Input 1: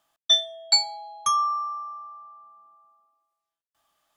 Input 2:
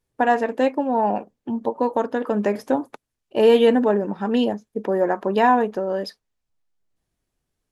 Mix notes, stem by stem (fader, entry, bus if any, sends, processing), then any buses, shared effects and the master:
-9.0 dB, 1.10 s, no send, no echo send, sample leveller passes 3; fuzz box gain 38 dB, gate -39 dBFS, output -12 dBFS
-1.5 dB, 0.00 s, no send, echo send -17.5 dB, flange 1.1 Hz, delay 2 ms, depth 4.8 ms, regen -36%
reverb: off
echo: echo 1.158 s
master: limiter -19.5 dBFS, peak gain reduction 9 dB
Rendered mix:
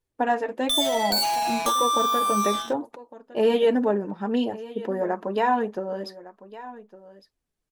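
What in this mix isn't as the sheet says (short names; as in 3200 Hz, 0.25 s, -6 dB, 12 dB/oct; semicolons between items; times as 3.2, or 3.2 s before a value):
stem 1: entry 1.10 s -> 0.40 s; master: missing limiter -19.5 dBFS, peak gain reduction 9 dB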